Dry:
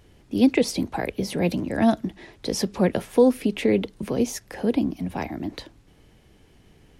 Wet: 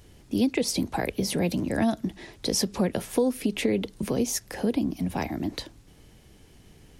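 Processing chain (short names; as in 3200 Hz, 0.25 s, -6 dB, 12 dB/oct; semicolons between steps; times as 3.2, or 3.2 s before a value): tone controls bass +2 dB, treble +7 dB; compressor 3:1, threshold -22 dBFS, peak gain reduction 9 dB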